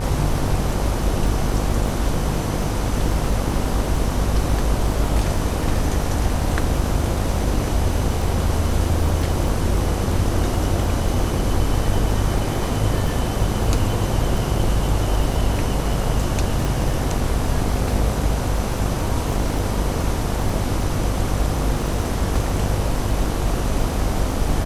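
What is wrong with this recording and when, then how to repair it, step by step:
buzz 50 Hz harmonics 31 -25 dBFS
crackle 54/s -28 dBFS
16.65 pop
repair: de-click; de-hum 50 Hz, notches 31

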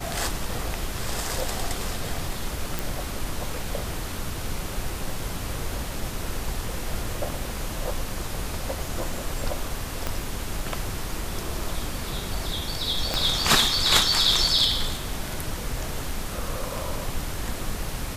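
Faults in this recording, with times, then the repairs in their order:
2.79 pop
10.07 pop -11 dBFS
13.14 pop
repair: de-click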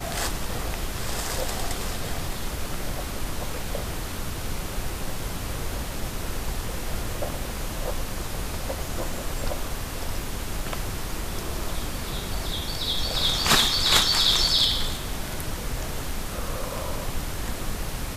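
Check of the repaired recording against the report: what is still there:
10.07 pop
13.14 pop

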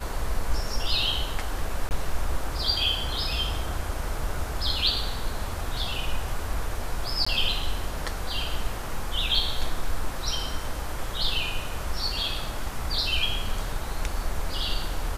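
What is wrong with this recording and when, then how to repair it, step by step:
1.89–1.91 gap 19 ms
7.25–7.26 gap 15 ms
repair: interpolate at 1.89, 19 ms; interpolate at 7.25, 15 ms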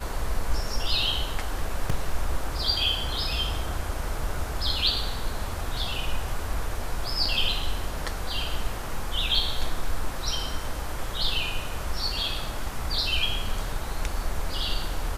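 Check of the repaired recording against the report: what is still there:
none

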